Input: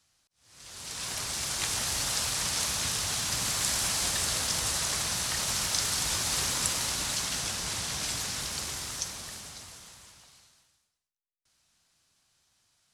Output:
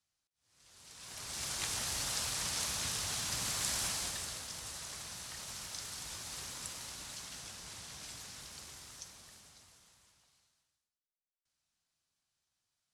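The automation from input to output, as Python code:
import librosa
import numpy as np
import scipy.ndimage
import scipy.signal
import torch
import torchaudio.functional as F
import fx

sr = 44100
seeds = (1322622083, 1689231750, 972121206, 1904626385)

y = fx.gain(x, sr, db=fx.line((1.0, -15.5), (1.43, -6.5), (3.85, -6.5), (4.46, -15.0)))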